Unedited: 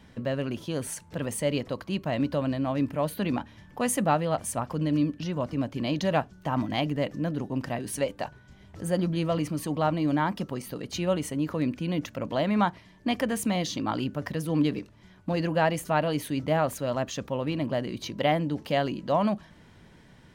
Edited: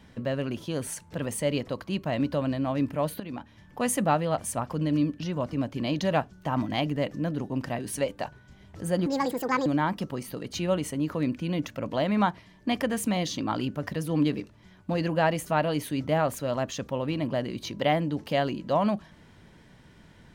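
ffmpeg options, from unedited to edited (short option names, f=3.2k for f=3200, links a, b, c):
-filter_complex "[0:a]asplit=4[a][b][c][d];[a]atrim=end=3.2,asetpts=PTS-STARTPTS,afade=t=out:st=3.196:d=0.004:c=hsin:silence=0.211349[e];[b]atrim=start=3.2:end=9.064,asetpts=PTS-STARTPTS,afade=t=in:d=0.64:silence=0.211349[f];[c]atrim=start=9.06:end=10.05,asetpts=PTS-STARTPTS,asetrate=72765,aresample=44100[g];[d]atrim=start=10.046[h];[e][f]concat=n=2:v=0:a=1[i];[i][g]acrossfade=d=0.004:c1=hsin:c2=hsin[j];[j][h]acrossfade=d=0.004:c1=hsin:c2=hsin"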